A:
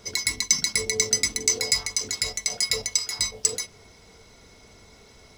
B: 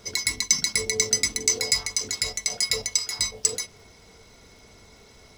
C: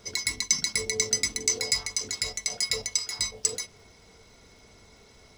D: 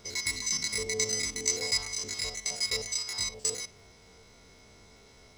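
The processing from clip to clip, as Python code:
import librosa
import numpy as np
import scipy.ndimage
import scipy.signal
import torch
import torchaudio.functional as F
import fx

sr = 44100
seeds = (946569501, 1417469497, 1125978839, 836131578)

y1 = fx.dmg_crackle(x, sr, seeds[0], per_s=110.0, level_db=-48.0)
y2 = fx.peak_eq(y1, sr, hz=14000.0, db=-8.0, octaves=0.33)
y2 = y2 * librosa.db_to_amplitude(-3.0)
y3 = fx.spec_steps(y2, sr, hold_ms=50)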